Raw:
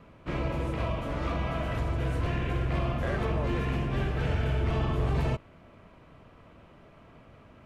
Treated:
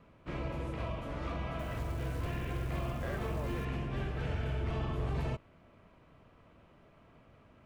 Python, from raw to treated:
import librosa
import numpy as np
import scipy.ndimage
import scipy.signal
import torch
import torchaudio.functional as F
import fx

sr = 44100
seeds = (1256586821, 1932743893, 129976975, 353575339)

y = fx.quant_companded(x, sr, bits=6, at=(1.59, 3.65))
y = y * 10.0 ** (-7.0 / 20.0)